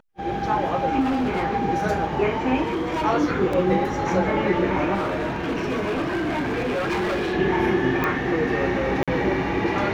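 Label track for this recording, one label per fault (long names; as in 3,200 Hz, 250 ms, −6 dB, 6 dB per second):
1.000000	1.440000	clipping −19.5 dBFS
2.630000	3.050000	clipping −21.5 dBFS
3.530000	3.530000	drop-out 3.6 ms
4.940000	7.340000	clipping −21.5 dBFS
8.040000	8.040000	click −11 dBFS
9.030000	9.080000	drop-out 46 ms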